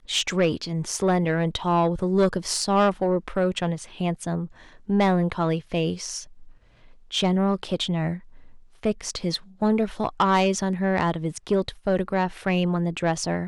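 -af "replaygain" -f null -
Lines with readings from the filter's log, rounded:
track_gain = +4.5 dB
track_peak = 0.162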